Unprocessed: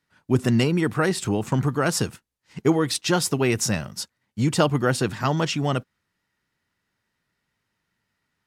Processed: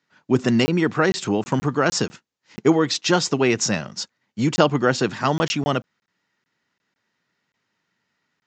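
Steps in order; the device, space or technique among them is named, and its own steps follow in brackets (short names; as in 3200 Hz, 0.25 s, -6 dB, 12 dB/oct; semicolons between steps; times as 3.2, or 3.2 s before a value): call with lost packets (HPF 170 Hz 12 dB/oct; downsampling 16000 Hz; packet loss packets of 20 ms random); gain +3.5 dB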